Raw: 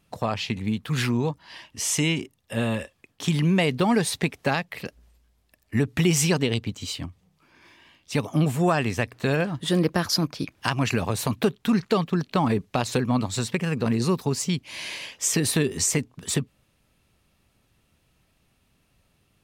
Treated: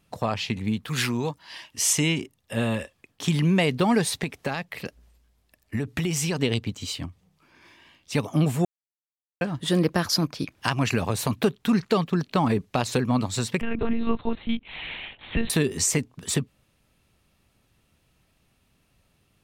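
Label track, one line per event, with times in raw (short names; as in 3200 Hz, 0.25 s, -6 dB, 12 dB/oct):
0.880000	1.930000	tilt +1.5 dB/oct
4.190000	6.390000	compressor, threshold -22 dBFS
8.650000	9.410000	mute
13.610000	15.500000	monotone LPC vocoder at 8 kHz 230 Hz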